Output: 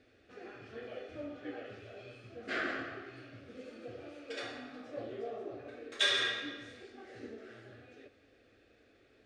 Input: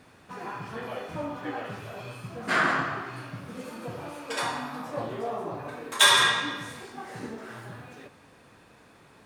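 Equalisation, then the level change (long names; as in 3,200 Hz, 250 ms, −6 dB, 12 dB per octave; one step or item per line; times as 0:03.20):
high-frequency loss of the air 140 metres
phaser with its sweep stopped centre 400 Hz, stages 4
−5.5 dB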